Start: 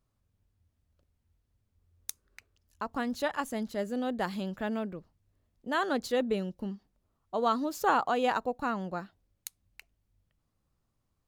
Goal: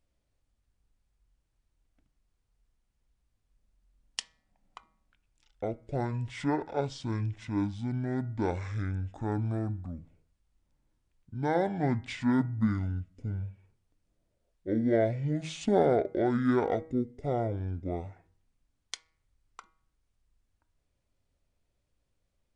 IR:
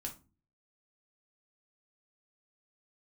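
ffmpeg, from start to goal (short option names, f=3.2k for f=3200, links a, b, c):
-filter_complex "[0:a]asetrate=22050,aresample=44100,bandreject=f=159.8:t=h:w=4,bandreject=f=319.6:t=h:w=4,bandreject=f=479.4:t=h:w=4,bandreject=f=639.2:t=h:w=4,bandreject=f=799:t=h:w=4,bandreject=f=958.8:t=h:w=4,bandreject=f=1.1186k:t=h:w=4,bandreject=f=1.2784k:t=h:w=4,bandreject=f=1.4382k:t=h:w=4,bandreject=f=1.598k:t=h:w=4,bandreject=f=1.7578k:t=h:w=4,bandreject=f=1.9176k:t=h:w=4,bandreject=f=2.0774k:t=h:w=4,bandreject=f=2.2372k:t=h:w=4,bandreject=f=2.397k:t=h:w=4,asplit=2[a][b];[1:a]atrim=start_sample=2205,lowpass=3.6k[c];[b][c]afir=irnorm=-1:irlink=0,volume=-12.5dB[d];[a][d]amix=inputs=2:normalize=0"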